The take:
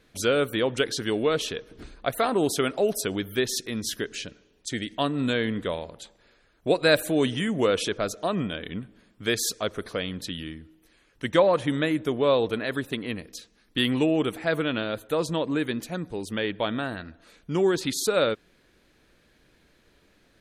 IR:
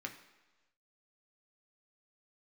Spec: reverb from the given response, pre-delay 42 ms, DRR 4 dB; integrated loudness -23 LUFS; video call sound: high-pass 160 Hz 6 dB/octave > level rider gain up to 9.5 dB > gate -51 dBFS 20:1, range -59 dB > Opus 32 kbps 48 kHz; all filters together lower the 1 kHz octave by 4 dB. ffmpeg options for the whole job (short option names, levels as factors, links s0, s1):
-filter_complex "[0:a]equalizer=f=1000:t=o:g=-5.5,asplit=2[s0][s1];[1:a]atrim=start_sample=2205,adelay=42[s2];[s1][s2]afir=irnorm=-1:irlink=0,volume=0.668[s3];[s0][s3]amix=inputs=2:normalize=0,highpass=f=160:p=1,dynaudnorm=m=2.99,agate=range=0.00112:threshold=0.00282:ratio=20,volume=1.26" -ar 48000 -c:a libopus -b:a 32k